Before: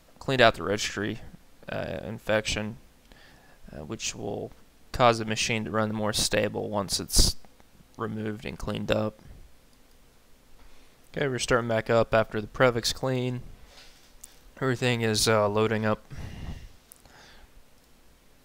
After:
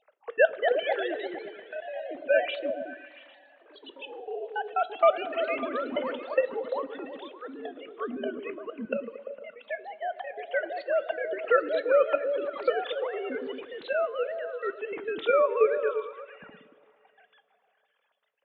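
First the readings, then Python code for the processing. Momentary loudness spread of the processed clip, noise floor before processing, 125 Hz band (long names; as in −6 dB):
17 LU, −58 dBFS, below −30 dB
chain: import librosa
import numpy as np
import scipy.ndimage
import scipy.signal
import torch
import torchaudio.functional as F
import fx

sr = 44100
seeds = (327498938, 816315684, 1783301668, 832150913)

p1 = fx.sine_speech(x, sr)
p2 = fx.level_steps(p1, sr, step_db=21)
p3 = p1 + F.gain(torch.from_numpy(p2), 3.0).numpy()
p4 = fx.step_gate(p3, sr, bpm=200, pattern='xx.x.x.x.xxxxxxx', floor_db=-24.0, edge_ms=4.5)
p5 = fx.echo_pitch(p4, sr, ms=284, semitones=2, count=2, db_per_echo=-6.0)
p6 = p5 + fx.echo_stepped(p5, sr, ms=114, hz=200.0, octaves=0.7, feedback_pct=70, wet_db=-2.0, dry=0)
p7 = fx.rev_double_slope(p6, sr, seeds[0], early_s=0.21, late_s=2.9, knee_db=-18, drr_db=13.0)
y = F.gain(torch.from_numpy(p7), -6.5).numpy()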